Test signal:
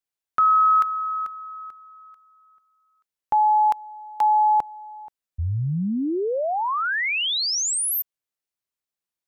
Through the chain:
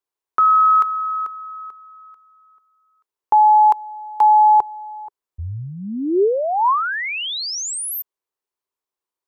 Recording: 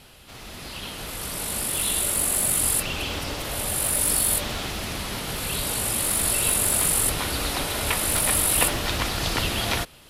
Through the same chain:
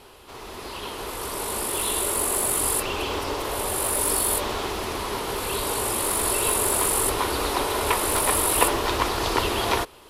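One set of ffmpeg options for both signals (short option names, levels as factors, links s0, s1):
-af "equalizer=f=160:t=o:w=0.67:g=-7,equalizer=f=400:t=o:w=0.67:g=12,equalizer=f=1000:t=o:w=0.67:g=11,volume=0.794"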